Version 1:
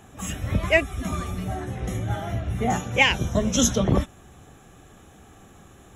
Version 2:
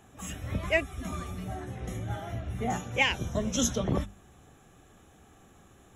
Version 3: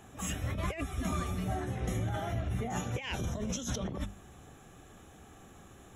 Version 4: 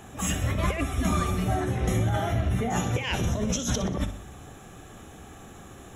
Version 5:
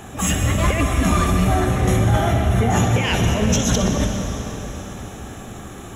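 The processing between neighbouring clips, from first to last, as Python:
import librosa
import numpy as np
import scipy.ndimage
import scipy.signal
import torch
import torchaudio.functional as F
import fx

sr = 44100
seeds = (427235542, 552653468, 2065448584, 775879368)

y1 = fx.hum_notches(x, sr, base_hz=50, count=4)
y1 = F.gain(torch.from_numpy(y1), -7.0).numpy()
y2 = fx.over_compress(y1, sr, threshold_db=-34.0, ratio=-1.0)
y3 = fx.echo_feedback(y2, sr, ms=62, feedback_pct=53, wet_db=-12.0)
y3 = F.gain(torch.from_numpy(y3), 8.0).numpy()
y4 = 10.0 ** (-17.5 / 20.0) * np.tanh(y3 / 10.0 ** (-17.5 / 20.0))
y4 = fx.rev_plate(y4, sr, seeds[0], rt60_s=4.3, hf_ratio=0.85, predelay_ms=105, drr_db=4.5)
y4 = F.gain(torch.from_numpy(y4), 8.5).numpy()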